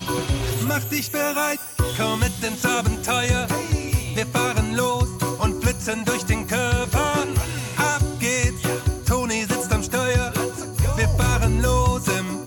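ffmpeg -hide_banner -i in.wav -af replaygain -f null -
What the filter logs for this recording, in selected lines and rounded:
track_gain = +5.2 dB
track_peak = 0.278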